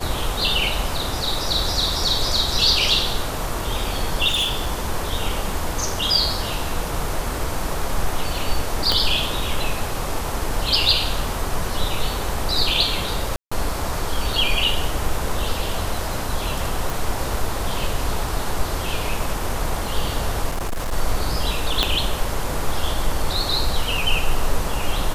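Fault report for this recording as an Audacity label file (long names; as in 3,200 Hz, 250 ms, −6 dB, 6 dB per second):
4.270000	4.720000	clipping −17.5 dBFS
8.920000	8.920000	click
13.360000	13.520000	drop-out 155 ms
16.900000	16.900000	click
20.510000	20.930000	clipping −20.5 dBFS
21.830000	21.830000	click −3 dBFS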